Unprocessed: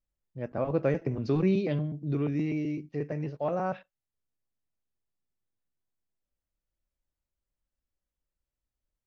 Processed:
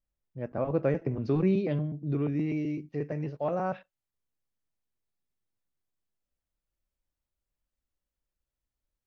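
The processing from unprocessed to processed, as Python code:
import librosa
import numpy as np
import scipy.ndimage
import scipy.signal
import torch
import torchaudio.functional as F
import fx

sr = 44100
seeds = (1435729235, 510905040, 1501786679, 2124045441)

y = fx.high_shelf(x, sr, hz=3700.0, db=fx.steps((0.0, -10.0), (2.48, -3.0)))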